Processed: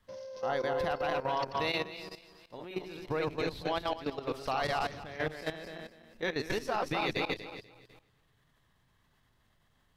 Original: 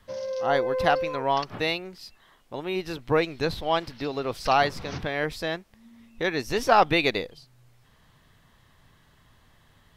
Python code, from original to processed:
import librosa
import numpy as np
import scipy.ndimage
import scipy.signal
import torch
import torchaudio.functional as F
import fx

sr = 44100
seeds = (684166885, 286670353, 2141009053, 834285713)

y = fx.reverse_delay_fb(x, sr, ms=123, feedback_pct=55, wet_db=-2.0)
y = fx.level_steps(y, sr, step_db=13)
y = y * 10.0 ** (-5.0 / 20.0)